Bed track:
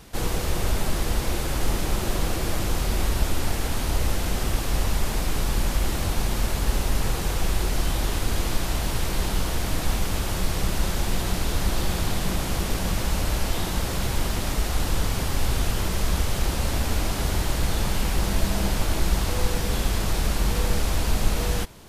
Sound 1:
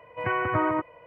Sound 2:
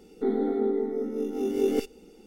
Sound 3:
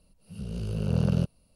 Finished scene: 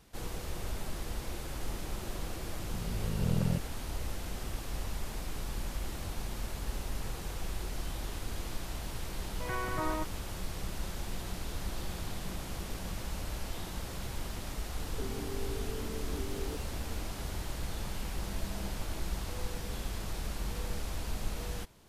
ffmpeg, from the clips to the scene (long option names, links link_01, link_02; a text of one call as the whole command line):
ffmpeg -i bed.wav -i cue0.wav -i cue1.wav -i cue2.wav -filter_complex "[0:a]volume=-13.5dB[link_01];[2:a]acompressor=threshold=-37dB:ratio=6:attack=3.2:release=140:knee=1:detection=peak[link_02];[3:a]atrim=end=1.55,asetpts=PTS-STARTPTS,volume=-6dB,afade=type=in:duration=0.004:curve=hsin,afade=type=out:start_time=1.546:duration=0.004:curve=hsin,adelay=2330[link_03];[1:a]atrim=end=1.06,asetpts=PTS-STARTPTS,volume=-10dB,afade=type=in:duration=0.004:curve=hsin,afade=type=out:start_time=1.056:duration=0.004:curve=hsin,adelay=9230[link_04];[link_02]atrim=end=2.26,asetpts=PTS-STARTPTS,volume=-2.5dB,afade=type=in:duration=0.004:curve=hsin,afade=type=out:start_time=2.256:duration=0.004:curve=hsin,adelay=14770[link_05];[link_01][link_03][link_04][link_05]amix=inputs=4:normalize=0" out.wav